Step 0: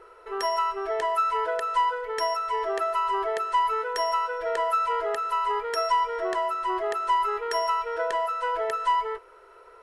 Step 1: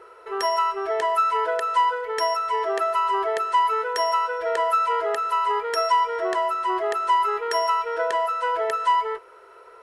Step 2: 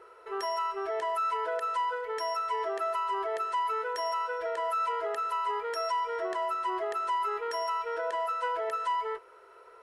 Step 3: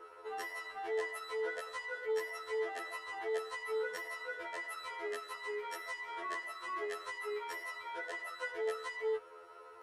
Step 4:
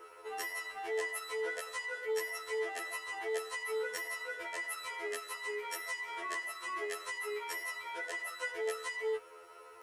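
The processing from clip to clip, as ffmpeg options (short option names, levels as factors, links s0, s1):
-af "highpass=f=150:p=1,volume=1.5"
-af "alimiter=limit=0.126:level=0:latency=1:release=42,volume=0.501"
-af "afftfilt=real='re*2*eq(mod(b,4),0)':imag='im*2*eq(mod(b,4),0)':win_size=2048:overlap=0.75,volume=1.26"
-af "aexciter=amount=2.2:drive=2.9:freq=2100"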